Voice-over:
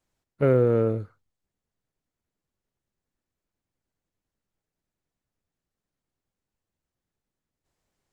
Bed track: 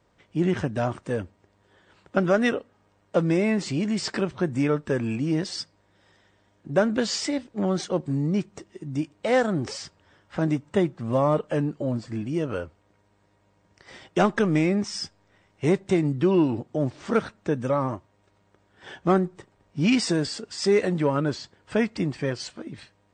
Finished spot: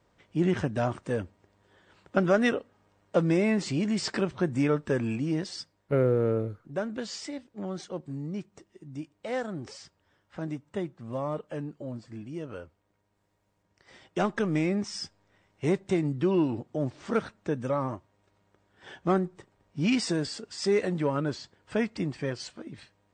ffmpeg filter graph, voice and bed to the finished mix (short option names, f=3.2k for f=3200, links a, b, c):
-filter_complex "[0:a]adelay=5500,volume=-4dB[a];[1:a]volume=4dB,afade=t=out:st=5.01:d=0.89:silence=0.375837,afade=t=in:st=13.59:d=1.14:silence=0.501187[b];[a][b]amix=inputs=2:normalize=0"